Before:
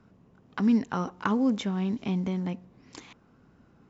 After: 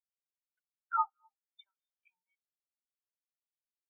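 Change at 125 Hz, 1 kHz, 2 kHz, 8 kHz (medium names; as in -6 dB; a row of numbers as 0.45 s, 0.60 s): under -40 dB, -1.5 dB, -15.5 dB, no reading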